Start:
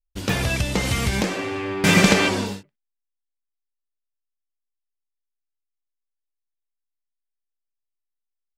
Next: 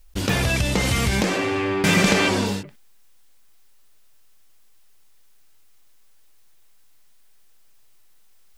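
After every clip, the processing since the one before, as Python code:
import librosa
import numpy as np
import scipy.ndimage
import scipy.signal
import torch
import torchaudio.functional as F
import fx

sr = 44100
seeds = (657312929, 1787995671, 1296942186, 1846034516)

y = fx.env_flatten(x, sr, amount_pct=50)
y = y * 10.0 ** (-3.5 / 20.0)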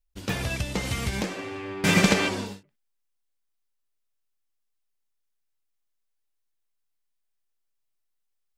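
y = fx.upward_expand(x, sr, threshold_db=-32.0, expansion=2.5)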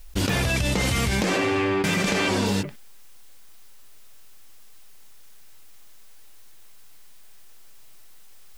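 y = fx.env_flatten(x, sr, amount_pct=100)
y = y * 10.0 ** (-7.0 / 20.0)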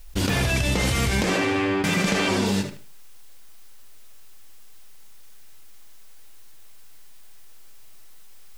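y = fx.echo_feedback(x, sr, ms=76, feedback_pct=24, wet_db=-10.0)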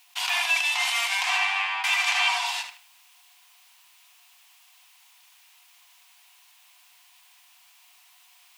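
y = scipy.signal.sosfilt(scipy.signal.cheby1(6, 9, 700.0, 'highpass', fs=sr, output='sos'), x)
y = y * 10.0 ** (6.0 / 20.0)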